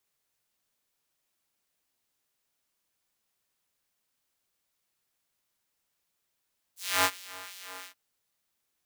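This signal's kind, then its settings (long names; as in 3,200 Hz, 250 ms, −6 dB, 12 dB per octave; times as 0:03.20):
subtractive patch with filter wobble F#2, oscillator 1 triangle, oscillator 2 square, interval 0 semitones, oscillator 2 level −7 dB, noise −22.5 dB, filter highpass, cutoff 680 Hz, Q 0.93, filter envelope 3.5 octaves, filter decay 0.08 s, attack 285 ms, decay 0.06 s, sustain −19.5 dB, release 0.10 s, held 1.08 s, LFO 2.8 Hz, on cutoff 0.9 octaves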